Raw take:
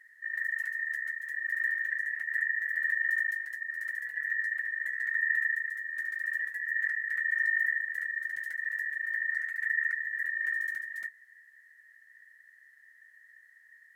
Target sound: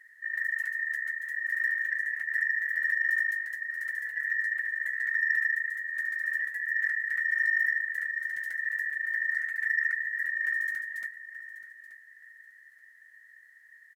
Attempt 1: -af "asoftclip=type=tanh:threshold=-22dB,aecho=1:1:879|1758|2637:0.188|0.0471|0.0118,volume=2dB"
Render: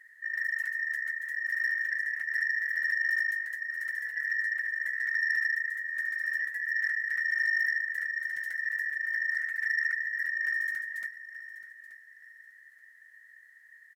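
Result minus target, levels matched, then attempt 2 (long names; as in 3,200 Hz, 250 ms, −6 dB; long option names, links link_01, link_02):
soft clipping: distortion +15 dB
-af "asoftclip=type=tanh:threshold=-13dB,aecho=1:1:879|1758|2637:0.188|0.0471|0.0118,volume=2dB"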